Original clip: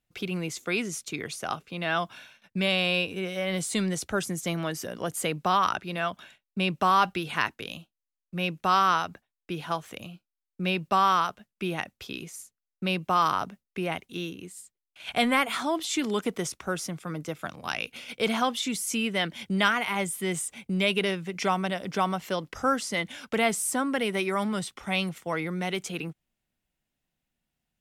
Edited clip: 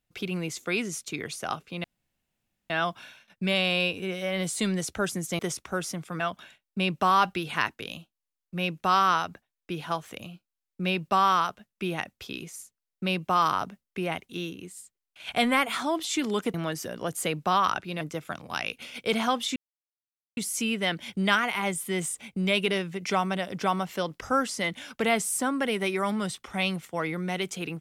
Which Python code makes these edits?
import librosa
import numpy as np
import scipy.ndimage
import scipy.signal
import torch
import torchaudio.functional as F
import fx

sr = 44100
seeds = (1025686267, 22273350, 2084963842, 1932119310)

y = fx.edit(x, sr, fx.insert_room_tone(at_s=1.84, length_s=0.86),
    fx.swap(start_s=4.53, length_s=1.47, other_s=16.34, other_length_s=0.81),
    fx.insert_silence(at_s=18.7, length_s=0.81), tone=tone)